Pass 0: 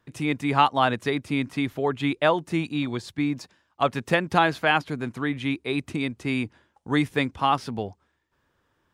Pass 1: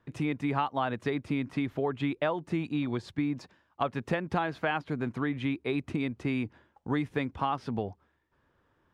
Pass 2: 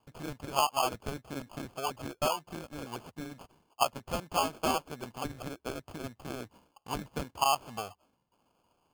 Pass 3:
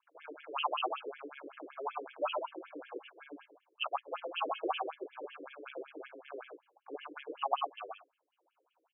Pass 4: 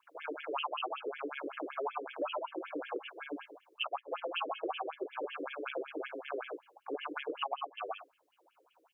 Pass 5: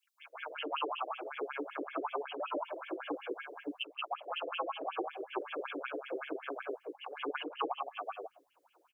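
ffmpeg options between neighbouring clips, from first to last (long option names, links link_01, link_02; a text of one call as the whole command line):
ffmpeg -i in.wav -af "lowpass=frequency=1900:poles=1,acompressor=threshold=-28dB:ratio=4,volume=1dB" out.wav
ffmpeg -i in.wav -af "lowshelf=frequency=510:width_type=q:width=1.5:gain=-12,acrusher=samples=23:mix=1:aa=0.000001" out.wav
ffmpeg -i in.wav -filter_complex "[0:a]asplit=2[link_01][link_02];[link_02]aecho=0:1:103|124:0.398|0.501[link_03];[link_01][link_03]amix=inputs=2:normalize=0,afftfilt=real='re*between(b*sr/1024,370*pow(2500/370,0.5+0.5*sin(2*PI*5.3*pts/sr))/1.41,370*pow(2500/370,0.5+0.5*sin(2*PI*5.3*pts/sr))*1.41)':imag='im*between(b*sr/1024,370*pow(2500/370,0.5+0.5*sin(2*PI*5.3*pts/sr))/1.41,370*pow(2500/370,0.5+0.5*sin(2*PI*5.3*pts/sr))*1.41)':win_size=1024:overlap=0.75,volume=1dB" out.wav
ffmpeg -i in.wav -af "acompressor=threshold=-42dB:ratio=8,volume=8.5dB" out.wav
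ffmpeg -i in.wav -filter_complex "[0:a]acrossover=split=590|2700[link_01][link_02][link_03];[link_02]adelay=180[link_04];[link_01]adelay=350[link_05];[link_05][link_04][link_03]amix=inputs=3:normalize=0,volume=2dB" out.wav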